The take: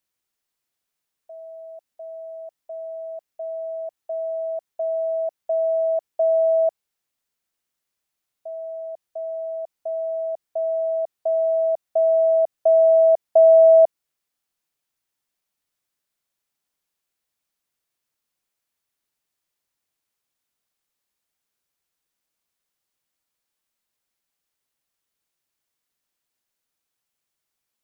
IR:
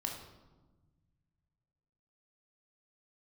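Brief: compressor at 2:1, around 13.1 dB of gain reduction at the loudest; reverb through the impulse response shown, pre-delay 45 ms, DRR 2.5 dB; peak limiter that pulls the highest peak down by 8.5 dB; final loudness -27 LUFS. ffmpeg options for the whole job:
-filter_complex "[0:a]acompressor=threshold=-35dB:ratio=2,alimiter=level_in=2dB:limit=-24dB:level=0:latency=1,volume=-2dB,asplit=2[a][b];[1:a]atrim=start_sample=2205,adelay=45[c];[b][c]afir=irnorm=-1:irlink=0,volume=-3dB[d];[a][d]amix=inputs=2:normalize=0,volume=6dB"

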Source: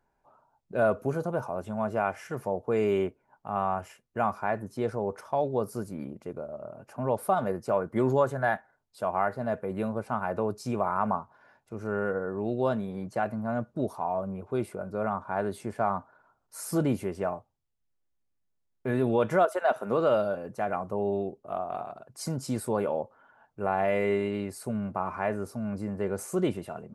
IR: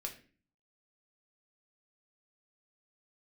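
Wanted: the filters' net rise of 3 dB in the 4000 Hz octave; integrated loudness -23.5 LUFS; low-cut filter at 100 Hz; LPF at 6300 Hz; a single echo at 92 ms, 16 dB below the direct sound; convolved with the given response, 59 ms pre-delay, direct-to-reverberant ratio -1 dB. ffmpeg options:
-filter_complex "[0:a]highpass=100,lowpass=6.3k,equalizer=f=4k:t=o:g=5,aecho=1:1:92:0.158,asplit=2[a][b];[1:a]atrim=start_sample=2205,adelay=59[c];[b][c]afir=irnorm=-1:irlink=0,volume=2.5dB[d];[a][d]amix=inputs=2:normalize=0,volume=3dB"

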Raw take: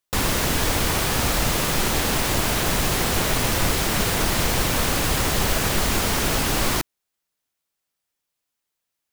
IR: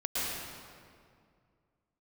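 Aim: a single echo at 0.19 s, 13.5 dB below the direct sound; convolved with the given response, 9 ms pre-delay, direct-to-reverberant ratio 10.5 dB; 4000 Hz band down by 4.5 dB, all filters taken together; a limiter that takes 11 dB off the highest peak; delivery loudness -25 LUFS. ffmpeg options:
-filter_complex "[0:a]equalizer=f=4k:t=o:g=-6,alimiter=limit=-19.5dB:level=0:latency=1,aecho=1:1:190:0.211,asplit=2[a][b];[1:a]atrim=start_sample=2205,adelay=9[c];[b][c]afir=irnorm=-1:irlink=0,volume=-18dB[d];[a][d]amix=inputs=2:normalize=0,volume=3dB"

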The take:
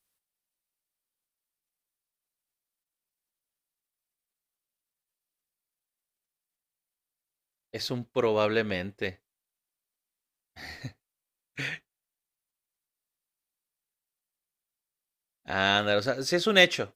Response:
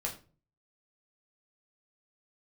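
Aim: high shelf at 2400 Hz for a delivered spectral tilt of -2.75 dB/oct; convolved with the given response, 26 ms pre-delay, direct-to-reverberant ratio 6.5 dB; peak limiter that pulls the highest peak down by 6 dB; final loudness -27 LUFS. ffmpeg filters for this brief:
-filter_complex "[0:a]highshelf=f=2.4k:g=8.5,alimiter=limit=-7.5dB:level=0:latency=1,asplit=2[a][b];[1:a]atrim=start_sample=2205,adelay=26[c];[b][c]afir=irnorm=-1:irlink=0,volume=-9dB[d];[a][d]amix=inputs=2:normalize=0,volume=-2.5dB"

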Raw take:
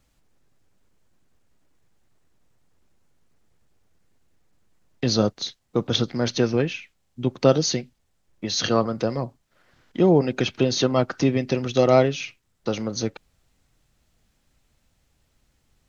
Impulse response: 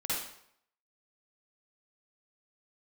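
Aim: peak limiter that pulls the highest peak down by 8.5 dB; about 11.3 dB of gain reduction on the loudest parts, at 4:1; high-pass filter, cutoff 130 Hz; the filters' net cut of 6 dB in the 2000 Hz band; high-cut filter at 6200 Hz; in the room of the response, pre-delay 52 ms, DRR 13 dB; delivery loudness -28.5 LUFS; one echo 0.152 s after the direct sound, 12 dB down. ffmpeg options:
-filter_complex "[0:a]highpass=130,lowpass=6.2k,equalizer=f=2k:t=o:g=-8.5,acompressor=threshold=-26dB:ratio=4,alimiter=limit=-22.5dB:level=0:latency=1,aecho=1:1:152:0.251,asplit=2[a][b];[1:a]atrim=start_sample=2205,adelay=52[c];[b][c]afir=irnorm=-1:irlink=0,volume=-18.5dB[d];[a][d]amix=inputs=2:normalize=0,volume=5.5dB"

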